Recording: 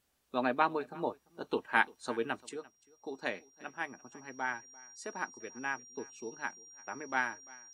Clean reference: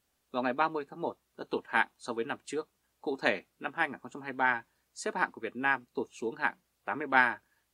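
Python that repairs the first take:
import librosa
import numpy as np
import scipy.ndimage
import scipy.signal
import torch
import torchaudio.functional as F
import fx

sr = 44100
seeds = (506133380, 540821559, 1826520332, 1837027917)

y = fx.notch(x, sr, hz=5700.0, q=30.0)
y = fx.fix_echo_inverse(y, sr, delay_ms=344, level_db=-22.5)
y = fx.gain(y, sr, db=fx.steps((0.0, 0.0), (2.49, 8.0)))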